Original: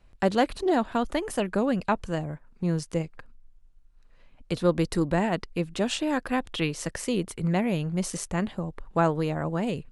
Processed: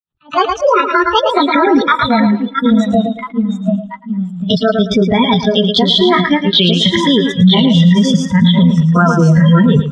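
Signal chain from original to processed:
pitch glide at a constant tempo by +7.5 semitones ending unshifted
noise gate −54 dBFS, range −49 dB
low-shelf EQ 260 Hz −5.5 dB
downward compressor 5 to 1, threshold −32 dBFS, peak gain reduction 12.5 dB
reverb reduction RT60 0.57 s
delay with pitch and tempo change per echo 558 ms, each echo −1 semitone, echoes 3, each echo −6 dB
loudspeaker in its box 110–4,200 Hz, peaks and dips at 110 Hz +9 dB, 170 Hz +7 dB, 530 Hz −8 dB, 1,300 Hz +9 dB, 2,100 Hz −5 dB, 3,300 Hz +9 dB
noise reduction from a noise print of the clip's start 28 dB
on a send: feedback echo with a high-pass in the loop 111 ms, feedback 28%, high-pass 190 Hz, level −11 dB
on the sum: boost into a limiter +30.5 dB
level that may rise only so fast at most 310 dB per second
level −1 dB

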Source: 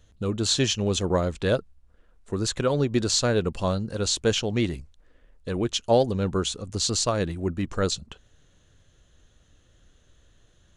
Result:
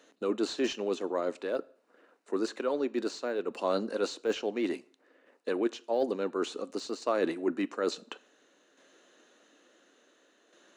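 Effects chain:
Butterworth high-pass 260 Hz 36 dB per octave
de-essing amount 95%
high-shelf EQ 5,500 Hz −10.5 dB
notch filter 3,300 Hz, Q 9.4
reversed playback
downward compressor 5 to 1, threshold −33 dBFS, peak gain reduction 16 dB
reversed playback
shaped tremolo saw down 0.57 Hz, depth 50%
convolution reverb RT60 0.55 s, pre-delay 10 ms, DRR 18.5 dB
level +8 dB

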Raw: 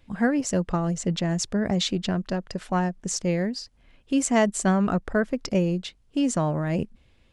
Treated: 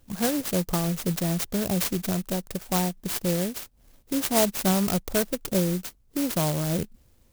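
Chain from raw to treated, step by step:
dynamic equaliser 250 Hz, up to −6 dB, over −36 dBFS, Q 2.9
converter with an unsteady clock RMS 0.15 ms

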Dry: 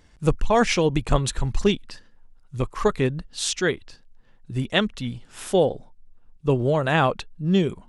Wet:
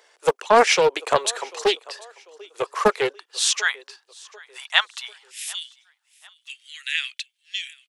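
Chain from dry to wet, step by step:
Butterworth high-pass 410 Hz 48 dB per octave, from 0:03.12 800 Hz, from 0:05.29 2,000 Hz
repeating echo 743 ms, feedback 40%, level −23.5 dB
highs frequency-modulated by the lows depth 0.32 ms
level +5.5 dB

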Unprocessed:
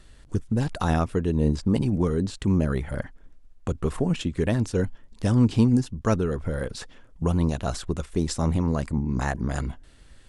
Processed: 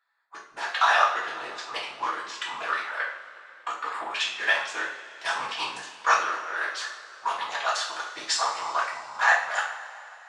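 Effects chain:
adaptive Wiener filter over 15 samples
low-pass filter 4,700 Hz 12 dB per octave
noise reduction from a noise print of the clip's start 19 dB
high-pass filter 1,000 Hz 24 dB per octave
random phases in short frames
coupled-rooms reverb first 0.5 s, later 3.2 s, from −18 dB, DRR −5 dB
level +8.5 dB

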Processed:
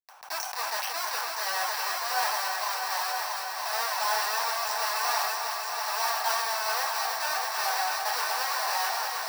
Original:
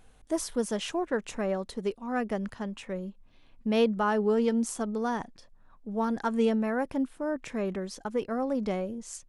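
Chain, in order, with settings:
adaptive Wiener filter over 41 samples
low-pass that shuts in the quiet parts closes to 1,900 Hz, open at −22 dBFS
in parallel at −1.5 dB: downward compressor 6 to 1, threshold −40 dBFS, peak gain reduction 19 dB
on the sum: brickwall limiter −24.5 dBFS, peak gain reduction 11 dB
comparator with hysteresis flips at −43 dBFS
elliptic high-pass filter 800 Hz, stop band 80 dB
high-shelf EQ 10,000 Hz +12 dB
echo machine with several playback heads 322 ms, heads all three, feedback 66%, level −9 dB
convolution reverb RT60 0.20 s, pre-delay 3 ms, DRR −2.5 dB
level that may fall only so fast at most 27 dB per second

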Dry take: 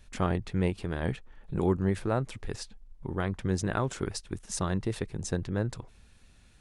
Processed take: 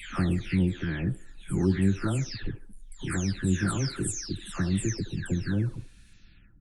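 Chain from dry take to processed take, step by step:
every frequency bin delayed by itself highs early, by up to 471 ms
flat-topped bell 690 Hz −13.5 dB
delay with a band-pass on its return 75 ms, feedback 31%, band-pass 650 Hz, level −12 dB
level +5 dB

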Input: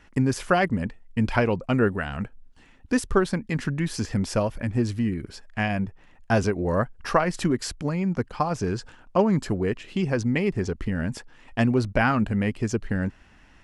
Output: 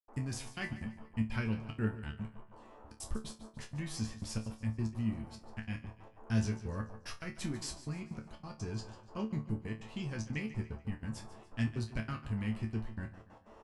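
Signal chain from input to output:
guitar amp tone stack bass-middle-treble 6-0-2
noise in a band 220–1,100 Hz −63 dBFS
gate pattern ".xxxxx.xx.x.x.x" 185 BPM −60 dB
resonators tuned to a chord D2 fifth, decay 0.23 s
on a send: repeating echo 145 ms, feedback 43%, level −15 dB
on the sum: level +15 dB

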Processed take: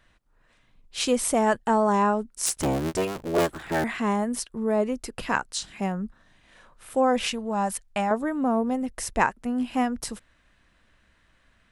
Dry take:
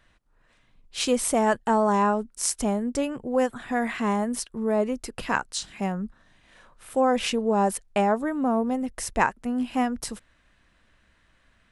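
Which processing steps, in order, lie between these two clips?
0:02.46–0:03.84: sub-harmonics by changed cycles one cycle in 3, inverted
0:07.29–0:08.11: parametric band 370 Hz −11.5 dB 1.2 octaves

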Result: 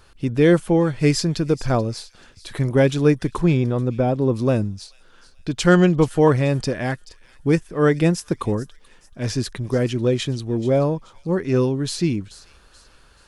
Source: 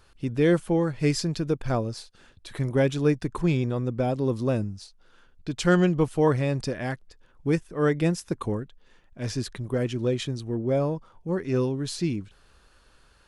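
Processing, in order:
0:03.39–0:04.34: parametric band 9,500 Hz −5 dB → −11 dB 2.7 octaves
delay with a high-pass on its return 432 ms, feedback 38%, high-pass 3,400 Hz, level −14.5 dB
level +6 dB

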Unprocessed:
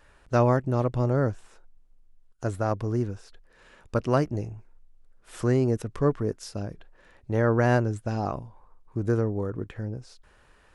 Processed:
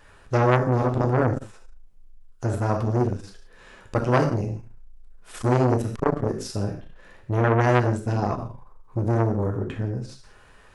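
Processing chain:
reverb whose tail is shaped and stops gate 210 ms falling, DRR 2 dB
saturating transformer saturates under 1,100 Hz
level +4.5 dB

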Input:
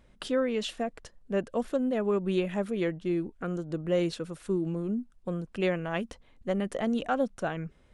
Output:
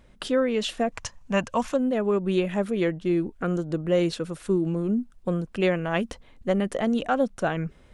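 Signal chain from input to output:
0:00.92–0:01.74: graphic EQ with 15 bands 100 Hz +10 dB, 400 Hz −10 dB, 1,000 Hz +11 dB, 2,500 Hz +8 dB, 6,300 Hz +11 dB
in parallel at +2 dB: speech leveller within 4 dB 0.5 s
on the sum: level −2 dB

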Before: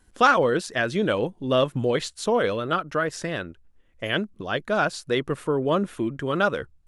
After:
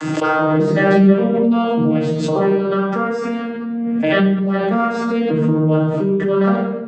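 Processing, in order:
vocoder with an arpeggio as carrier major triad, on D#3, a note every 588 ms
mains-hum notches 50/100/150/200 Hz
in parallel at +1 dB: downward compressor, threshold −29 dBFS, peak gain reduction 11.5 dB
on the sum: rectangular room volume 480 cubic metres, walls mixed, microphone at 2.4 metres
background raised ahead of every attack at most 20 dB per second
level −2.5 dB

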